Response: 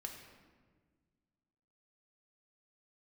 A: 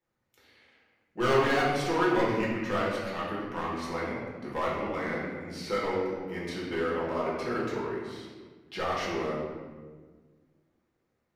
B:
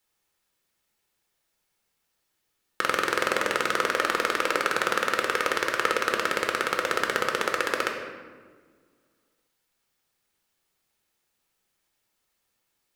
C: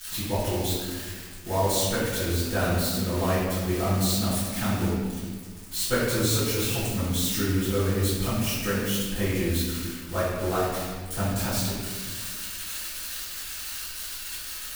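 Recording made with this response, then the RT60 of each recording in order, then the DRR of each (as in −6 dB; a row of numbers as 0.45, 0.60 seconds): B; 1.5, 1.5, 1.5 seconds; −7.0, 2.0, −14.5 decibels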